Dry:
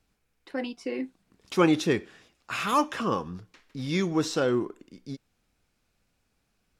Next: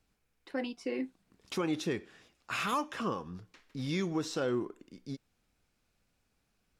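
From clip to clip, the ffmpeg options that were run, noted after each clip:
ffmpeg -i in.wav -af "alimiter=limit=-20dB:level=0:latency=1:release=353,volume=-3dB" out.wav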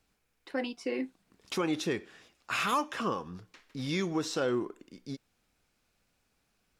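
ffmpeg -i in.wav -af "lowshelf=frequency=260:gain=-5,volume=3.5dB" out.wav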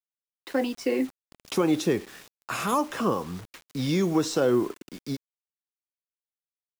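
ffmpeg -i in.wav -filter_complex "[0:a]acrossover=split=210|1000|6300[link_01][link_02][link_03][link_04];[link_03]acompressor=threshold=-44dB:ratio=6[link_05];[link_01][link_02][link_05][link_04]amix=inputs=4:normalize=0,acrusher=bits=8:mix=0:aa=0.000001,volume=8dB" out.wav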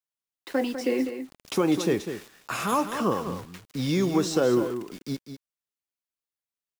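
ffmpeg -i in.wav -af "aecho=1:1:199:0.335" out.wav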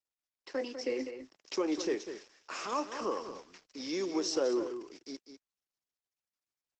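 ffmpeg -i in.wav -af "highpass=frequency=310:width=0.5412,highpass=frequency=310:width=1.3066,equalizer=frequency=740:width_type=q:width=4:gain=-5,equalizer=frequency=1400:width_type=q:width=4:gain=-5,equalizer=frequency=3600:width_type=q:width=4:gain=-5,equalizer=frequency=5400:width_type=q:width=4:gain=9,lowpass=frequency=6700:width=0.5412,lowpass=frequency=6700:width=1.3066,volume=-6dB" -ar 48000 -c:a libopus -b:a 12k out.opus

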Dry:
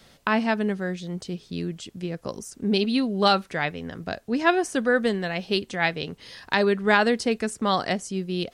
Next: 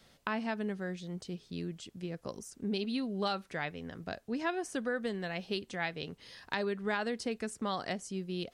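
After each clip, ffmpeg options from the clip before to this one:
ffmpeg -i in.wav -af "acompressor=threshold=-23dB:ratio=2.5,volume=-8.5dB" out.wav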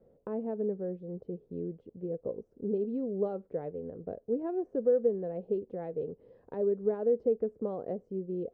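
ffmpeg -i in.wav -af "lowpass=frequency=480:width_type=q:width=5.2,volume=-2.5dB" out.wav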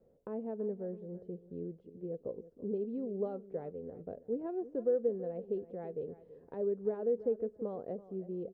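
ffmpeg -i in.wav -af "aecho=1:1:330|660:0.158|0.0365,volume=-4.5dB" out.wav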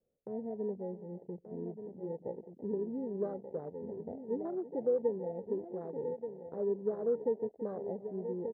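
ffmpeg -i in.wav -af "aecho=1:1:1181:0.355,afwtdn=0.00891" out.wav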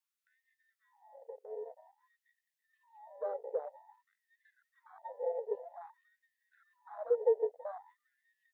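ffmpeg -i in.wav -af "afftfilt=real='re*gte(b*sr/1024,390*pow(1600/390,0.5+0.5*sin(2*PI*0.51*pts/sr)))':imag='im*gte(b*sr/1024,390*pow(1600/390,0.5+0.5*sin(2*PI*0.51*pts/sr)))':win_size=1024:overlap=0.75,volume=4.5dB" out.wav

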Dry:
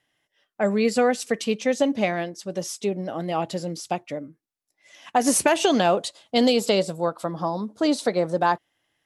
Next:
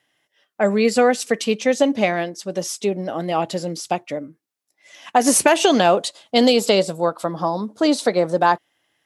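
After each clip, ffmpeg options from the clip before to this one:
ffmpeg -i in.wav -af "highpass=frequency=160:poles=1,volume=5dB" out.wav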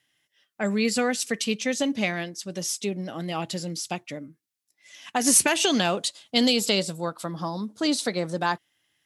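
ffmpeg -i in.wav -af "equalizer=frequency=630:width_type=o:width=2.4:gain=-12" out.wav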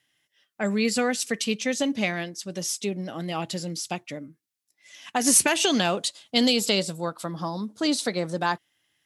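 ffmpeg -i in.wav -af anull out.wav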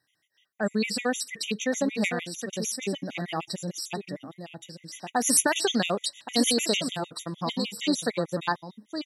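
ffmpeg -i in.wav -af "aecho=1:1:1122:0.422,afftfilt=real='re*gt(sin(2*PI*6.6*pts/sr)*(1-2*mod(floor(b*sr/1024/1900),2)),0)':imag='im*gt(sin(2*PI*6.6*pts/sr)*(1-2*mod(floor(b*sr/1024/1900),2)),0)':win_size=1024:overlap=0.75" out.wav

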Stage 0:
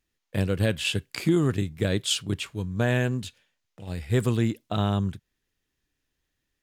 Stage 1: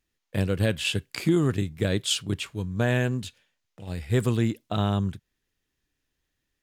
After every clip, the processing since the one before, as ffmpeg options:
ffmpeg -i in.wav -af anull out.wav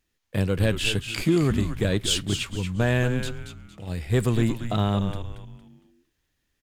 ffmpeg -i in.wav -filter_complex "[0:a]asplit=2[link_01][link_02];[link_02]asoftclip=type=tanh:threshold=-29.5dB,volume=-6.5dB[link_03];[link_01][link_03]amix=inputs=2:normalize=0,asplit=5[link_04][link_05][link_06][link_07][link_08];[link_05]adelay=230,afreqshift=-110,volume=-8.5dB[link_09];[link_06]adelay=460,afreqshift=-220,volume=-18.4dB[link_10];[link_07]adelay=690,afreqshift=-330,volume=-28.3dB[link_11];[link_08]adelay=920,afreqshift=-440,volume=-38.2dB[link_12];[link_04][link_09][link_10][link_11][link_12]amix=inputs=5:normalize=0" out.wav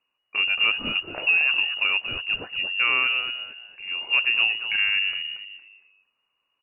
ffmpeg -i in.wav -af "lowpass=frequency=2500:width_type=q:width=0.5098,lowpass=frequency=2500:width_type=q:width=0.6013,lowpass=frequency=2500:width_type=q:width=0.9,lowpass=frequency=2500:width_type=q:width=2.563,afreqshift=-2900" out.wav

